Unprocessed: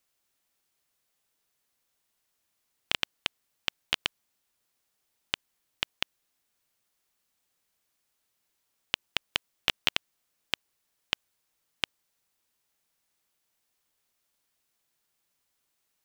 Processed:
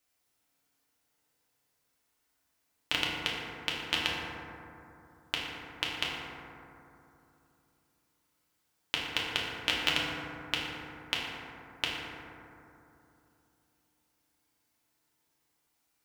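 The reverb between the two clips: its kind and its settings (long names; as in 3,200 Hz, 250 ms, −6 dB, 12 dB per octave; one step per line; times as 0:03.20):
feedback delay network reverb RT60 2.9 s, low-frequency decay 1.2×, high-frequency decay 0.3×, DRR −5.5 dB
level −3.5 dB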